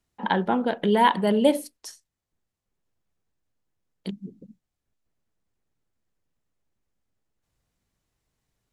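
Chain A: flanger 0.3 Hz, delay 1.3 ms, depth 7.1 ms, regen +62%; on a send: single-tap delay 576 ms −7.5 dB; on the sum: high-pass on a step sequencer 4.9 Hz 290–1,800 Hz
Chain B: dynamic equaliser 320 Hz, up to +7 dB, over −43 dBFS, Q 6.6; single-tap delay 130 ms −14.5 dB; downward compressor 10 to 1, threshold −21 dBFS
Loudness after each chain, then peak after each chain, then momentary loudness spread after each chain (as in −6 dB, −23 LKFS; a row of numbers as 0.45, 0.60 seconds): −25.0, −28.0 LKFS; −7.0, −9.5 dBFS; 11, 16 LU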